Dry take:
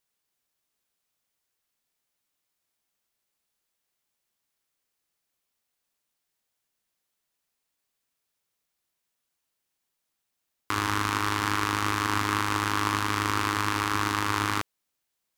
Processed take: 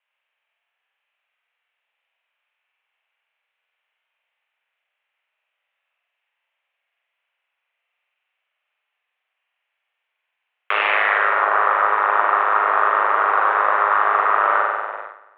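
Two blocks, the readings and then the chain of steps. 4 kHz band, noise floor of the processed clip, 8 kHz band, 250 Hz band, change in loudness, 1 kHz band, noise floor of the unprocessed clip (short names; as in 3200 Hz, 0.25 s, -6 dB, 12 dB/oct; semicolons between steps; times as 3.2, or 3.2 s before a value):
-4.0 dB, -79 dBFS, under -40 dB, under -10 dB, +9.5 dB, +11.5 dB, -82 dBFS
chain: half-waves squared off; flutter echo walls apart 8.2 m, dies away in 1.3 s; in parallel at -10.5 dB: fuzz box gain 31 dB, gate -31 dBFS; on the sum: low-pass sweep 2500 Hz -> 1200 Hz, 10.86–11.48; mistuned SSB +99 Hz 460–3200 Hz; gain -1 dB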